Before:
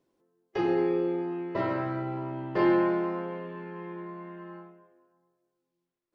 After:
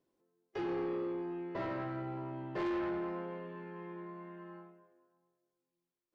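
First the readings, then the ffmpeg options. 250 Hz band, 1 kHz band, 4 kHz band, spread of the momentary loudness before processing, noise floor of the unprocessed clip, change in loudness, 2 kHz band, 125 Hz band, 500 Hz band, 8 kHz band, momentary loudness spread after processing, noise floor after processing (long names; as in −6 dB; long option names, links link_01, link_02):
−9.5 dB, −9.0 dB, −7.5 dB, 17 LU, −83 dBFS, −10.0 dB, −9.0 dB, −8.0 dB, −10.0 dB, can't be measured, 13 LU, below −85 dBFS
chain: -af "asoftclip=type=tanh:threshold=-26dB,volume=-6dB"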